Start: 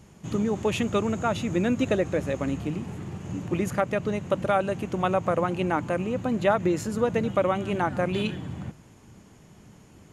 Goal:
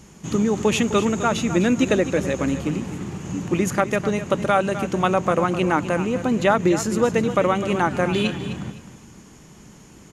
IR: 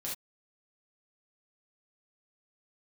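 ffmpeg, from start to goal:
-af "equalizer=frequency=100:width_type=o:width=0.67:gain=-8,equalizer=frequency=630:width_type=o:width=0.67:gain=-4,equalizer=frequency=6300:width_type=o:width=0.67:gain=5,aecho=1:1:256|512|768:0.251|0.0603|0.0145,volume=6.5dB"

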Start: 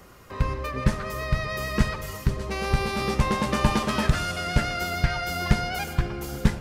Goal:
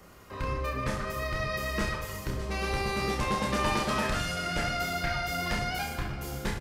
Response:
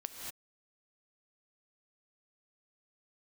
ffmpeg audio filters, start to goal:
-filter_complex "[0:a]acrossover=split=360[link_01][link_02];[link_01]asoftclip=type=tanh:threshold=-24.5dB[link_03];[link_03][link_02]amix=inputs=2:normalize=0,aecho=1:1:30|64.5|104.2|149.8|202.3:0.631|0.398|0.251|0.158|0.1,volume=-4.5dB"

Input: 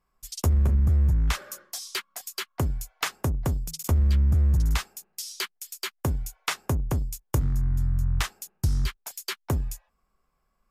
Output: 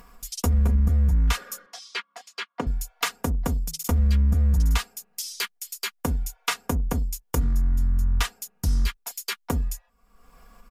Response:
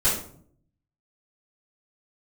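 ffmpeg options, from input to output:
-filter_complex "[0:a]aecho=1:1:4.2:0.86,acompressor=mode=upward:threshold=-33dB:ratio=2.5,asettb=1/sr,asplit=3[link_01][link_02][link_03];[link_01]atrim=end=1.664[link_04];[link_02]atrim=start=1.66:end=2.67,asetpts=PTS-STARTPTS,afade=type=in:duration=0.004:curve=qsin,afade=type=out:start_time=1.006:duration=0.004:curve=qsin,highpass=210,lowpass=3600[link_05];[link_03]atrim=start=2.666[link_06];[link_04][link_05]acrossfade=duration=0.004:curve1=hsin:curve2=qsin[link_07];[link_07][link_06]acrossfade=duration=0.004:curve1=qsin:curve2=hsin"

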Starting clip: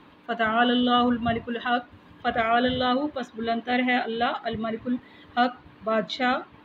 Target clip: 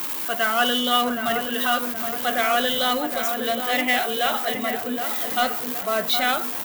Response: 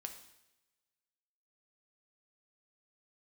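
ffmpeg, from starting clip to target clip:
-filter_complex "[0:a]aeval=exprs='val(0)+0.5*0.0211*sgn(val(0))':channel_layout=same,highpass=130,aemphasis=mode=production:type=riaa,asplit=2[link_01][link_02];[link_02]aeval=exprs='0.0562*(abs(mod(val(0)/0.0562+3,4)-2)-1)':channel_layout=same,volume=-7.5dB[link_03];[link_01][link_03]amix=inputs=2:normalize=0,asplit=2[link_04][link_05];[link_05]adelay=769,lowpass=frequency=1600:poles=1,volume=-6dB,asplit=2[link_06][link_07];[link_07]adelay=769,lowpass=frequency=1600:poles=1,volume=0.54,asplit=2[link_08][link_09];[link_09]adelay=769,lowpass=frequency=1600:poles=1,volume=0.54,asplit=2[link_10][link_11];[link_11]adelay=769,lowpass=frequency=1600:poles=1,volume=0.54,asplit=2[link_12][link_13];[link_13]adelay=769,lowpass=frequency=1600:poles=1,volume=0.54,asplit=2[link_14][link_15];[link_15]adelay=769,lowpass=frequency=1600:poles=1,volume=0.54,asplit=2[link_16][link_17];[link_17]adelay=769,lowpass=frequency=1600:poles=1,volume=0.54[link_18];[link_04][link_06][link_08][link_10][link_12][link_14][link_16][link_18]amix=inputs=8:normalize=0"

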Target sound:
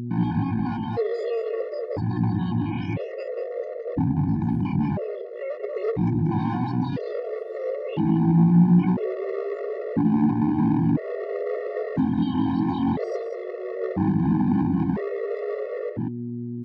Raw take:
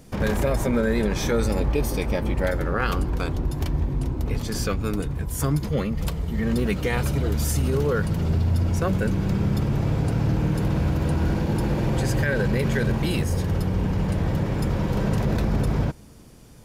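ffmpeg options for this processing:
ffmpeg -i in.wav -filter_complex "[0:a]afftdn=noise_reduction=14:noise_floor=-32,aeval=exprs='val(0)+0.0224*(sin(2*PI*60*n/s)+sin(2*PI*2*60*n/s)/2+sin(2*PI*3*60*n/s)/3+sin(2*PI*4*60*n/s)/4+sin(2*PI*5*60*n/s)/5)':channel_layout=same,alimiter=limit=-19.5dB:level=0:latency=1:release=74,asetrate=88200,aresample=44100,atempo=0.5,lowshelf=frequency=630:width_type=q:width=3:gain=10,volume=10.5dB,asoftclip=hard,volume=-10.5dB,highpass=140,equalizer=frequency=180:width_type=q:width=4:gain=6,equalizer=frequency=390:width_type=q:width=4:gain=-10,equalizer=frequency=840:width_type=q:width=4:gain=9,equalizer=frequency=1300:width_type=q:width=4:gain=-6,equalizer=frequency=1900:width_type=q:width=4:gain=8,equalizer=frequency=3200:width_type=q:width=4:gain=-6,lowpass=frequency=4800:width=0.5412,lowpass=frequency=4800:width=1.3066,asplit=2[link_01][link_02];[link_02]adelay=186.6,volume=-7dB,highshelf=frequency=4000:gain=-4.2[link_03];[link_01][link_03]amix=inputs=2:normalize=0,afftfilt=real='re*gt(sin(2*PI*0.5*pts/sr)*(1-2*mod(floor(b*sr/1024/360),2)),0)':imag='im*gt(sin(2*PI*0.5*pts/sr)*(1-2*mod(floor(b*sr/1024/360),2)),0)':win_size=1024:overlap=0.75,volume=-4dB" out.wav

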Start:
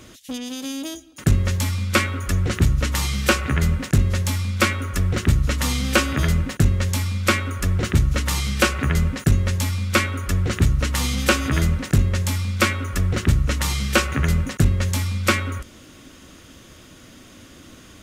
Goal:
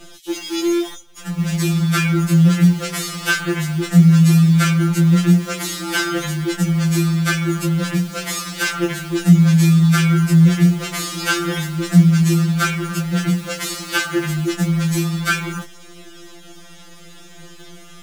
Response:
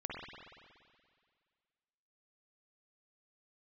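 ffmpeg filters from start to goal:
-filter_complex "[0:a]asplit=2[link_01][link_02];[link_02]alimiter=limit=-16.5dB:level=0:latency=1:release=35,volume=3dB[link_03];[link_01][link_03]amix=inputs=2:normalize=0,asettb=1/sr,asplit=3[link_04][link_05][link_06];[link_04]atrim=end=0.814[link_07];[link_05]atrim=start=0.81:end=1.39,asetpts=PTS-STARTPTS,afade=type=in:duration=0.004:curve=qsin,afade=type=out:start_time=0.576:duration=0.004:curve=qsin,acompressor=threshold=-31dB:ratio=2[link_08];[link_06]atrim=start=1.386[link_09];[link_07][link_08]acrossfade=duration=0.004:curve1=hsin:curve2=qsin[link_10];[link_10][link_09]acrossfade=duration=0.004:curve1=qsin:curve2=hsin,flanger=delay=15:depth=6.2:speed=0.14,afreqshift=73,acrossover=split=1200[link_11][link_12];[link_11]acrusher=bits=6:dc=4:mix=0:aa=0.000001[link_13];[link_13][link_12]amix=inputs=2:normalize=0,afftfilt=real='re*2.83*eq(mod(b,8),0)':imag='im*2.83*eq(mod(b,8),0)':win_size=2048:overlap=0.75,volume=1.5dB"

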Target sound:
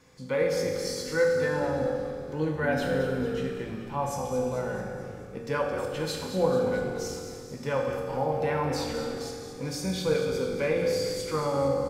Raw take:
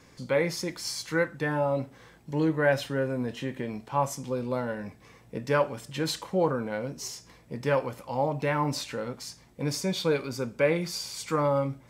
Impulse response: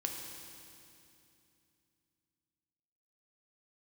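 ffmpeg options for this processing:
-filter_complex "[0:a]asplit=8[link_01][link_02][link_03][link_04][link_05][link_06][link_07][link_08];[link_02]adelay=219,afreqshift=-67,volume=-10.5dB[link_09];[link_03]adelay=438,afreqshift=-134,volume=-14.9dB[link_10];[link_04]adelay=657,afreqshift=-201,volume=-19.4dB[link_11];[link_05]adelay=876,afreqshift=-268,volume=-23.8dB[link_12];[link_06]adelay=1095,afreqshift=-335,volume=-28.2dB[link_13];[link_07]adelay=1314,afreqshift=-402,volume=-32.7dB[link_14];[link_08]adelay=1533,afreqshift=-469,volume=-37.1dB[link_15];[link_01][link_09][link_10][link_11][link_12][link_13][link_14][link_15]amix=inputs=8:normalize=0[link_16];[1:a]atrim=start_sample=2205,asetrate=66150,aresample=44100[link_17];[link_16][link_17]afir=irnorm=-1:irlink=0"

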